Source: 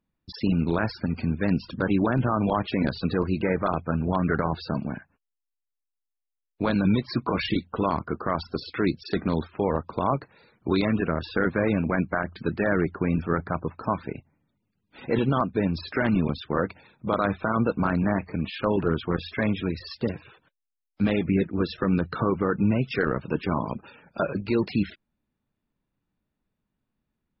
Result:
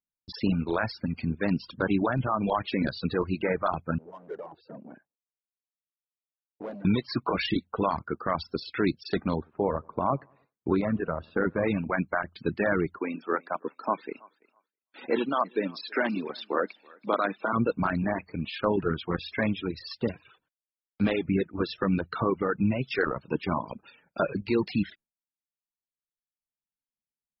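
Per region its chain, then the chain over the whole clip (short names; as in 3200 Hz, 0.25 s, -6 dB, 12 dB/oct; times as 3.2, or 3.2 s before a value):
3.98–6.85 overloaded stage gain 27.5 dB + band-pass 460 Hz, Q 1.6
9.36–11.63 LPF 1400 Hz + feedback echo 98 ms, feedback 53%, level -20.5 dB
12.98–17.53 HPF 240 Hz 24 dB/oct + thinning echo 0.33 s, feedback 27%, high-pass 490 Hz, level -14 dB
whole clip: reverb removal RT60 1.8 s; gate with hold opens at -53 dBFS; low shelf 150 Hz -4.5 dB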